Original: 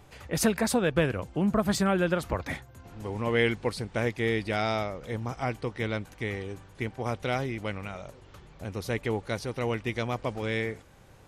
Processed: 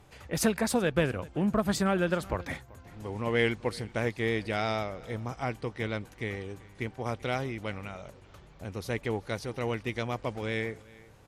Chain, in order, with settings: vibrato 6.3 Hz 19 cents; Chebyshev shaper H 7 -35 dB, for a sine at -12 dBFS; on a send: delay 385 ms -22.5 dB; on the sum: trim -1.5 dB

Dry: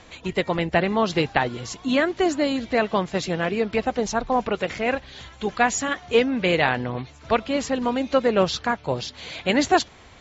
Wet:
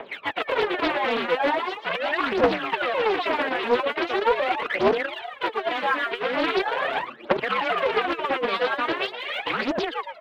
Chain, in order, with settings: square wave that keeps the level; frequency-shifting echo 116 ms, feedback 36%, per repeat +91 Hz, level -7 dB; mistuned SSB -76 Hz 470–3300 Hz; compressor with a negative ratio -21 dBFS, ratio -0.5; peak limiter -17.5 dBFS, peak gain reduction 8.5 dB; reverb removal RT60 0.63 s; phaser 0.41 Hz, delay 4.4 ms, feedback 79%; loudspeaker Doppler distortion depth 0.54 ms

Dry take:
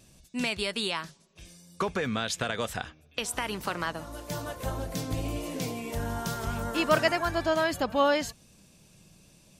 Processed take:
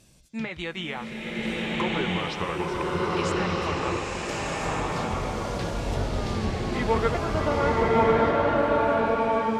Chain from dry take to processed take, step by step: sawtooth pitch modulation -6.5 st, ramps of 1429 ms; low-pass that closes with the level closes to 1.9 kHz, closed at -25.5 dBFS; swelling reverb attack 1320 ms, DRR -6 dB

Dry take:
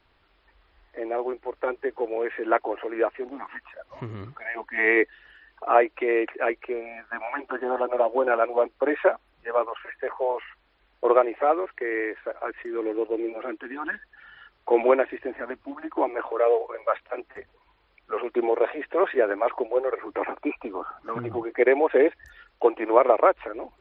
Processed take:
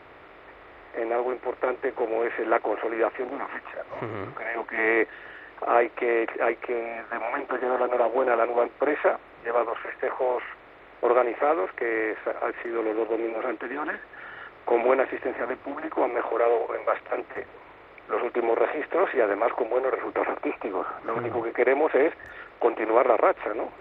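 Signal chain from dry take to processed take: spectral levelling over time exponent 0.6; trim -5 dB

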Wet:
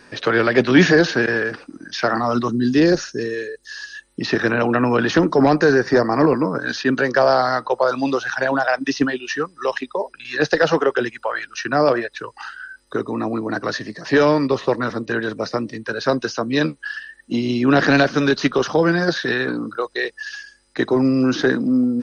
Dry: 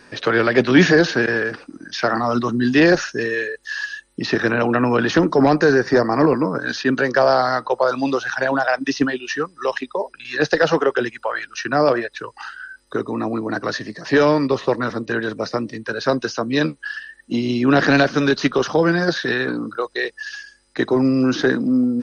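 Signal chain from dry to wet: 2.48–3.95 s: high-order bell 1.4 kHz -8 dB 2.7 oct

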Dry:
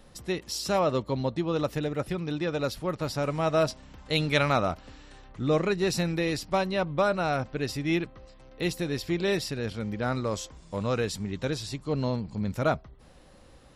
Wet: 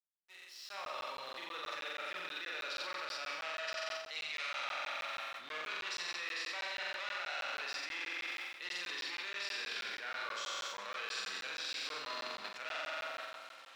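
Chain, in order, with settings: fade-in on the opening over 3.27 s; treble shelf 4.4 kHz -8 dB; on a send: echo whose repeats swap between lows and highs 131 ms, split 1.4 kHz, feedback 70%, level -12.5 dB; on the sum: overload inside the chain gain 26 dB; low-pass 6.7 kHz 12 dB/octave; peaking EQ 2.8 kHz +10.5 dB 2.6 oct; flutter echo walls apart 7.7 m, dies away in 1.4 s; transient shaper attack -4 dB, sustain +9 dB; crossover distortion -52.5 dBFS; high-pass 1.1 kHz 12 dB/octave; reverse; compression 6:1, threshold -35 dBFS, peak gain reduction 14 dB; reverse; crackling interface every 0.16 s, samples 512, zero, from 0.69 s; trim -3 dB

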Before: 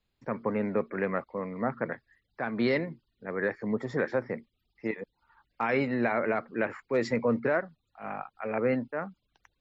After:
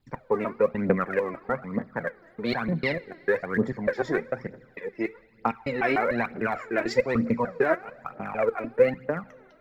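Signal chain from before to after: slices played last to first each 149 ms, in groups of 2; two-slope reverb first 0.21 s, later 2.6 s, from -18 dB, DRR 12 dB; phaser 1.1 Hz, delay 3.2 ms, feedback 68%; trim +1.5 dB

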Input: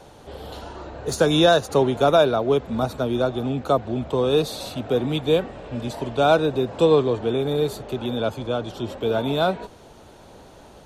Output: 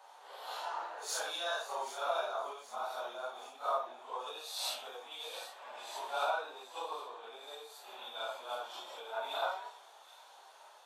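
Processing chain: phase randomisation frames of 200 ms; compression 5:1, threshold -32 dBFS, peak gain reduction 18 dB; ladder high-pass 730 Hz, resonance 40%; on a send: feedback echo behind a high-pass 778 ms, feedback 62%, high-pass 4.1 kHz, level -7 dB; on the sum: three bands expanded up and down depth 70%; trim +7 dB

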